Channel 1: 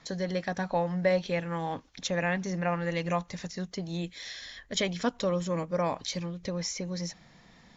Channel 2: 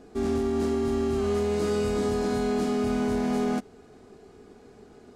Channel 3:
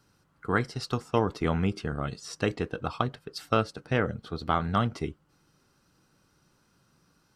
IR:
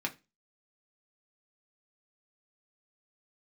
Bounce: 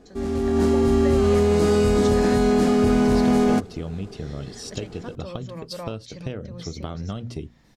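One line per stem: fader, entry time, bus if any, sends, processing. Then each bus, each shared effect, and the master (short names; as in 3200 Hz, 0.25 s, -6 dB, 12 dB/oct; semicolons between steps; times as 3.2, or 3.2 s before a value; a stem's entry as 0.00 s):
-14.0 dB, 0.00 s, bus A, no send, dry
-2.5 dB, 0.00 s, no bus, no send, dry
-4.5 dB, 2.35 s, bus A, no send, de-esser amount 75%; band shelf 1300 Hz -10.5 dB
bus A: 0.0 dB, notches 60/120/180/240 Hz; compressor 6:1, threshold -39 dBFS, peak gain reduction 13.5 dB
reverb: off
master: low shelf 130 Hz +6.5 dB; AGC gain up to 9 dB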